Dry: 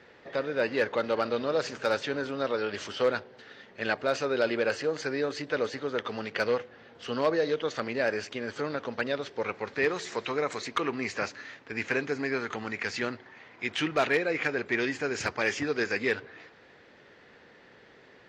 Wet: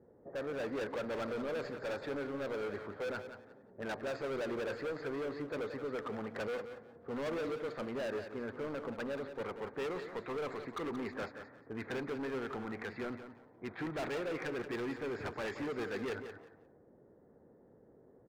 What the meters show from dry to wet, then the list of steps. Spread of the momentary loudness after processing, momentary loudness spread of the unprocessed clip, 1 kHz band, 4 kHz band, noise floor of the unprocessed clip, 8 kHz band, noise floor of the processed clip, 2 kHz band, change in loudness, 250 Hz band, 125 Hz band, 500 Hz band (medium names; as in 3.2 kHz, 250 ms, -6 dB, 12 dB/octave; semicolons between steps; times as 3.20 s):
8 LU, 8 LU, -9.5 dB, -13.5 dB, -56 dBFS, -15.0 dB, -63 dBFS, -13.0 dB, -9.5 dB, -6.5 dB, -6.0 dB, -9.0 dB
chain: level-controlled noise filter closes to 470 Hz, open at -24 dBFS; boxcar filter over 15 samples; overload inside the chain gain 33 dB; on a send: feedback delay 177 ms, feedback 20%, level -10 dB; on the sum: trim -2.5 dB